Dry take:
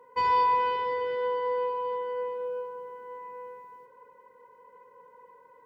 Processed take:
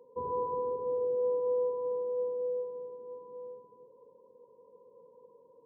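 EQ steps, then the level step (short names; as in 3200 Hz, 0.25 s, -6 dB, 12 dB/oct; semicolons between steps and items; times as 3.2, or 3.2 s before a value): Gaussian blur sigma 15 samples; HPF 200 Hz 6 dB/oct; +6.0 dB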